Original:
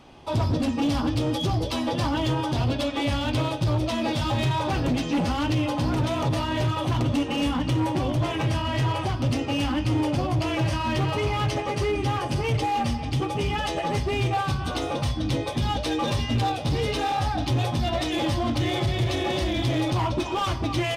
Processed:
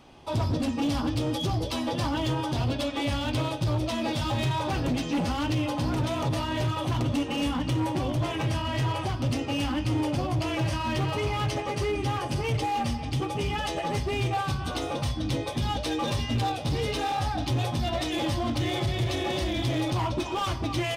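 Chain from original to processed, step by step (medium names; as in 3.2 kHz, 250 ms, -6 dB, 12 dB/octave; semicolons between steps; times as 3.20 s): treble shelf 6.7 kHz +4 dB; trim -3 dB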